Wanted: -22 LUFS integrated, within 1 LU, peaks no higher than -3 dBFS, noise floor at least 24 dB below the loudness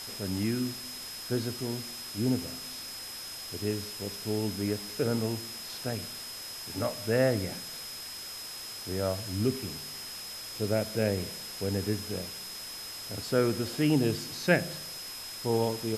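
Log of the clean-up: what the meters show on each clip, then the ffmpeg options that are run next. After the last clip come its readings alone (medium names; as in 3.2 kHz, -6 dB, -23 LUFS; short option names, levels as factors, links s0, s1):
steady tone 5.1 kHz; tone level -41 dBFS; noise floor -41 dBFS; noise floor target -56 dBFS; loudness -32.0 LUFS; peak level -9.5 dBFS; loudness target -22.0 LUFS
-> -af "bandreject=f=5100:w=30"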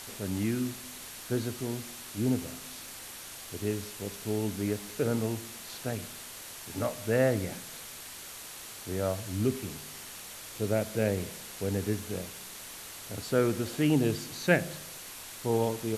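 steady tone not found; noise floor -45 dBFS; noise floor target -57 dBFS
-> -af "afftdn=nr=12:nf=-45"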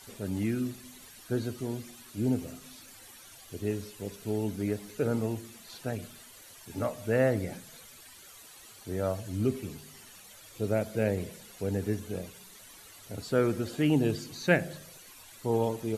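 noise floor -52 dBFS; noise floor target -56 dBFS
-> -af "afftdn=nr=6:nf=-52"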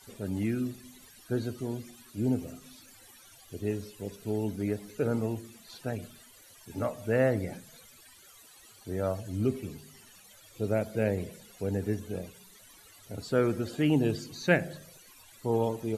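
noise floor -56 dBFS; loudness -32.0 LUFS; peak level -9.5 dBFS; loudness target -22.0 LUFS
-> -af "volume=3.16,alimiter=limit=0.708:level=0:latency=1"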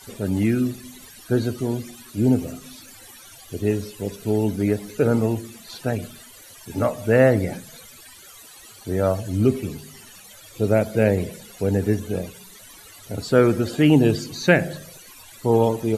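loudness -22.0 LUFS; peak level -3.0 dBFS; noise floor -46 dBFS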